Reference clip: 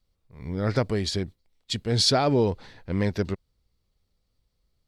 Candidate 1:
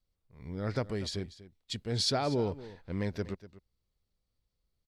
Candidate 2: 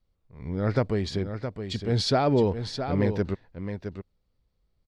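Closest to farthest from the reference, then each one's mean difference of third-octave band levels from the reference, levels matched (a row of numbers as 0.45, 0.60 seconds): 1, 2; 1.5, 4.0 decibels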